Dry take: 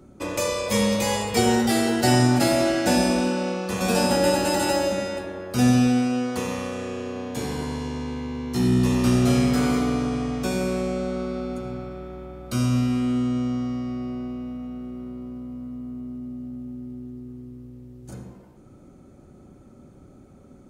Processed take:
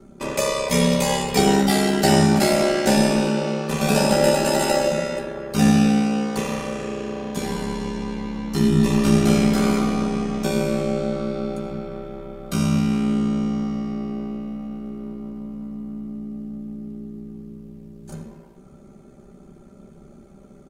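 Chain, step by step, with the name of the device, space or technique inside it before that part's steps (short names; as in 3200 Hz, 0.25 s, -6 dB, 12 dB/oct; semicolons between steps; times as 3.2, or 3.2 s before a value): ring-modulated robot voice (ring modulator 34 Hz; comb 5.1 ms); gain +4 dB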